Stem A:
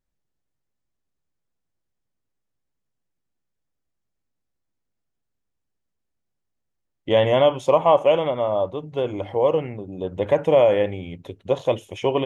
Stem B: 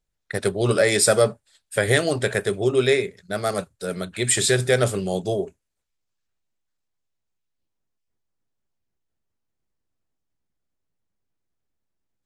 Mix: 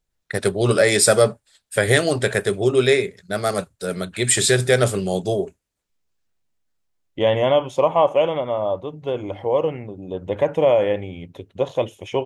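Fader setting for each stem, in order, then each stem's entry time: -0.5, +2.5 dB; 0.10, 0.00 s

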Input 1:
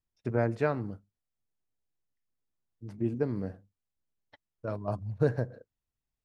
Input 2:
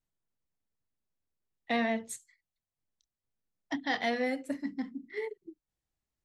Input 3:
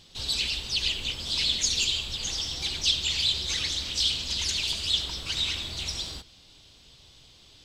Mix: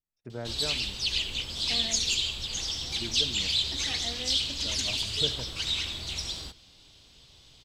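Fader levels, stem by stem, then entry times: -10.0, -12.0, -1.5 dB; 0.00, 0.00, 0.30 s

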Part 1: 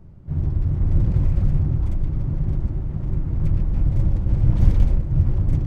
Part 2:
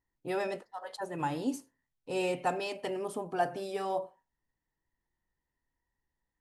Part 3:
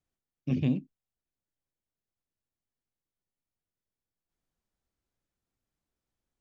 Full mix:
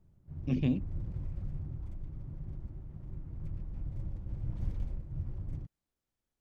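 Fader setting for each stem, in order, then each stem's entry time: -19.5 dB, off, -2.0 dB; 0.00 s, off, 0.00 s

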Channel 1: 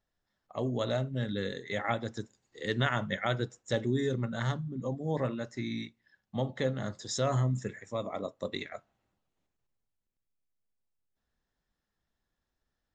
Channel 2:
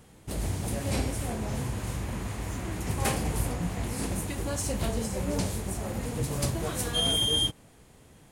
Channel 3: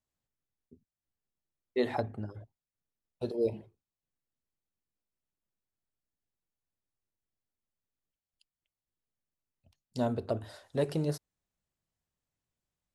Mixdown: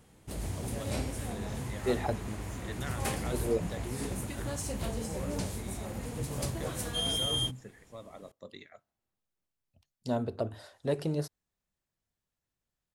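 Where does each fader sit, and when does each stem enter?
-12.0, -5.5, -0.5 dB; 0.00, 0.00, 0.10 s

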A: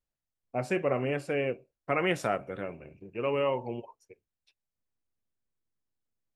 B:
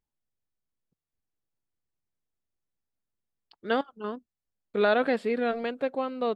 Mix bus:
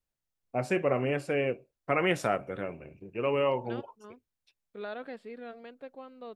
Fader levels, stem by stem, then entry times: +1.0, -16.0 dB; 0.00, 0.00 s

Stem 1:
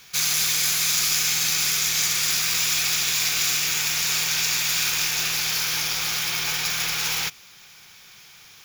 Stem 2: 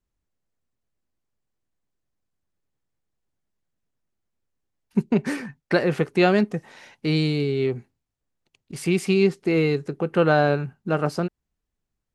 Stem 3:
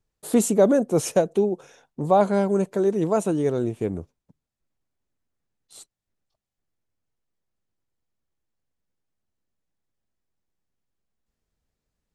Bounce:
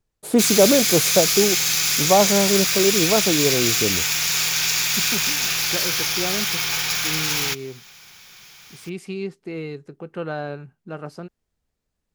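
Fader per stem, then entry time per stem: +2.0, -10.5, +2.0 dB; 0.25, 0.00, 0.00 s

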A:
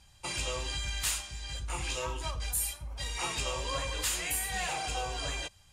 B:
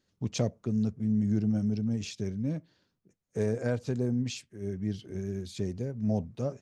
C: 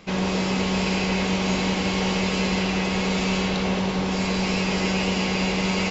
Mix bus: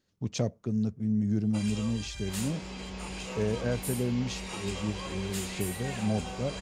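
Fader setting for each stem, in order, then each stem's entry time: -7.0, -0.5, -18.0 dB; 1.30, 0.00, 2.20 s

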